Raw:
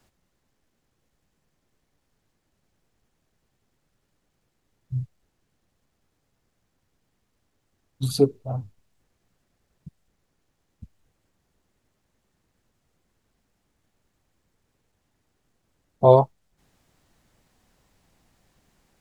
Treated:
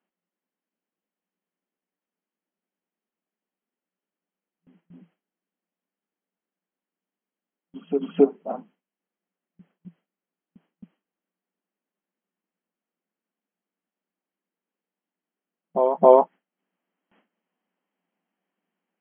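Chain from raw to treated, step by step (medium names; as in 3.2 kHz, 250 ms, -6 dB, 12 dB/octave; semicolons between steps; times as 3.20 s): in parallel at +2 dB: compression, threshold -23 dBFS, peak gain reduction 14 dB; on the sum: reverse echo 270 ms -8 dB; dynamic bell 1.7 kHz, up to +6 dB, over -40 dBFS, Q 1.6; FFT band-pass 170–3300 Hz; gate with hold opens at -48 dBFS; trim -1.5 dB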